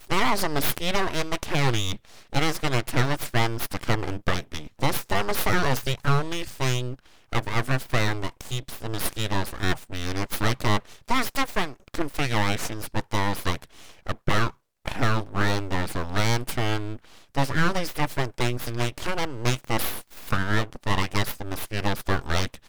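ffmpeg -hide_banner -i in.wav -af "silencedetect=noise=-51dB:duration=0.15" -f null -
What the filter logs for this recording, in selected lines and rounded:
silence_start: 14.55
silence_end: 14.85 | silence_duration: 0.30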